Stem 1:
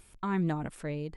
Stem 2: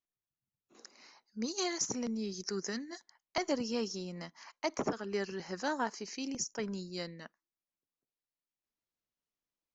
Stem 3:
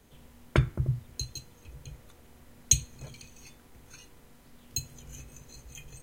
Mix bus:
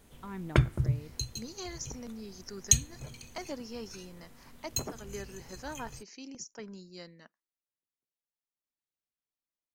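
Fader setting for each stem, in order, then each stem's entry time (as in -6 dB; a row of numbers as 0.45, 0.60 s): -11.5, -7.0, 0.0 dB; 0.00, 0.00, 0.00 s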